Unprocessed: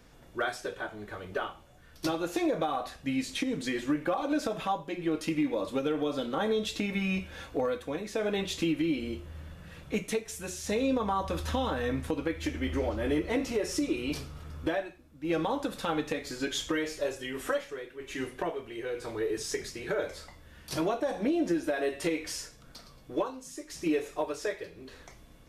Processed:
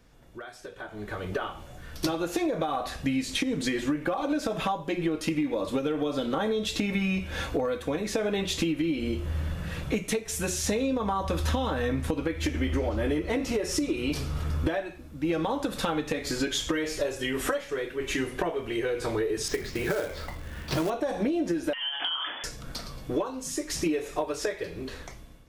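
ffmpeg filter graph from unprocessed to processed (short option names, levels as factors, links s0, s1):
-filter_complex "[0:a]asettb=1/sr,asplit=3[s0][s1][s2];[s0]atrim=end=19.484[s3];[s1]atrim=start=19.48:end=20.9,asetpts=PTS-STARTPTS,afade=t=in:d=0.004:c=qsin,afade=t=out:st=1.416:d=0.004:c=qsin,lowpass=3300,acrusher=bits=3:mode=log:mix=0:aa=0.000001[s4];[s2]atrim=start=20.896[s5];[s3][s4]acrossfade=d=0.004:c1=hsin:c2=qsin[s6];[s6][s5]acrossfade=d=0.004:c1=qsin:c2=hsin,asettb=1/sr,asplit=3[s7][s8][s9];[s7]atrim=end=21.734[s10];[s8]atrim=start=21.73:end=22.44,asetpts=PTS-STARTPTS,afade=t=in:d=0.004:c=qsin,afade=t=out:st=0.706:d=0.004:c=qsin,lowpass=f=3000:t=q:w=0.5098,lowpass=f=3000:t=q:w=0.6013,lowpass=f=3000:t=q:w=0.9,lowpass=f=3000:t=q:w=2.563,afreqshift=-3500,acompressor=threshold=0.0178:ratio=6:attack=3.2:release=140:knee=1:detection=peak,highpass=260[s11];[s9]atrim=start=22.436[s12];[s10][s11]acrossfade=d=0.004:c1=hsin:c2=qsin[s13];[s13][s12]acrossfade=d=0.004:c1=qsin:c2=hsin,acompressor=threshold=0.0126:ratio=5,lowshelf=f=140:g=4,dynaudnorm=f=750:g=3:m=5.96,volume=0.631"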